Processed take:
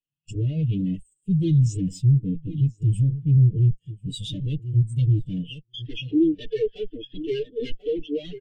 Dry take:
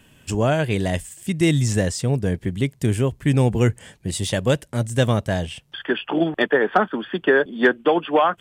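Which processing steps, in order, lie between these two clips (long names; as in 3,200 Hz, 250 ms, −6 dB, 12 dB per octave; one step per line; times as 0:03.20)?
lower of the sound and its delayed copy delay 6.7 ms
in parallel at −6 dB: wrap-around overflow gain 13.5 dB
on the sum: high-shelf EQ 5,500 Hz −3.5 dB
repeating echo 1,038 ms, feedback 18%, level −12.5 dB
hard clipping −22 dBFS, distortion −6 dB
drawn EQ curve 480 Hz 0 dB, 1,000 Hz −21 dB, 2,900 Hz +8 dB, 4,900 Hz +6 dB
every bin expanded away from the loudest bin 2.5 to 1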